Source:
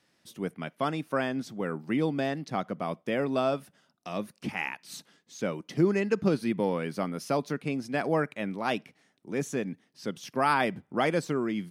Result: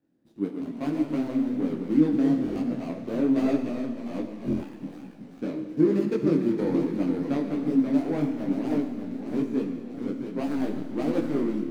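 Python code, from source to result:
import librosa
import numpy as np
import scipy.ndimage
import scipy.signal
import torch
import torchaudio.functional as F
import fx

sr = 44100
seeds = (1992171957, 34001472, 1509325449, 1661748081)

y = scipy.signal.medfilt(x, 41)
y = fx.peak_eq(y, sr, hz=290.0, db=14.0, octaves=0.52)
y = fx.echo_pitch(y, sr, ms=99, semitones=-1, count=3, db_per_echo=-6.0)
y = fx.rev_schroeder(y, sr, rt60_s=2.0, comb_ms=26, drr_db=5.5)
y = fx.buffer_glitch(y, sr, at_s=(2.42, 4.46), block=1024, repeats=5)
y = fx.detune_double(y, sr, cents=40)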